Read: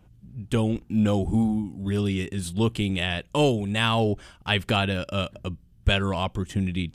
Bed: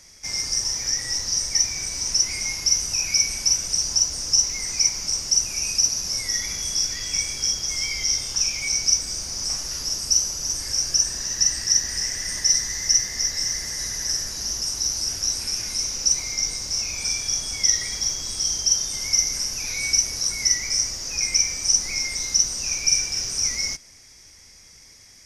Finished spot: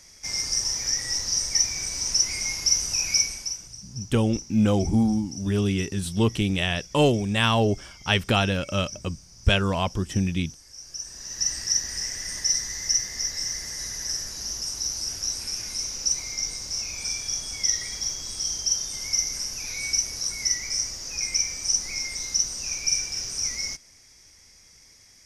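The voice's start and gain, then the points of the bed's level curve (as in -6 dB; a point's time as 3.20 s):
3.60 s, +1.5 dB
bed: 3.18 s -1.5 dB
3.81 s -21 dB
10.72 s -21 dB
11.51 s -4.5 dB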